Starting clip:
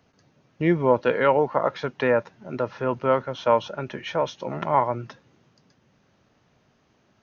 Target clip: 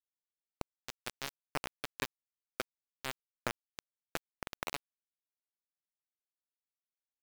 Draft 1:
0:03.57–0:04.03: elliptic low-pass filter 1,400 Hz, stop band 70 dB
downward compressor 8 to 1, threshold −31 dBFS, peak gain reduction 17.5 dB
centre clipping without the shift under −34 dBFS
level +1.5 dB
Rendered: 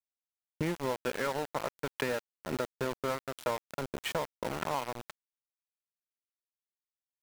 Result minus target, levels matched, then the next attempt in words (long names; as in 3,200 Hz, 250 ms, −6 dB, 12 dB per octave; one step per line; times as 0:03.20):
centre clipping without the shift: distortion −16 dB
0:03.57–0:04.03: elliptic low-pass filter 1,400 Hz, stop band 70 dB
downward compressor 8 to 1, threshold −31 dBFS, peak gain reduction 17.5 dB
centre clipping without the shift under −23.5 dBFS
level +1.5 dB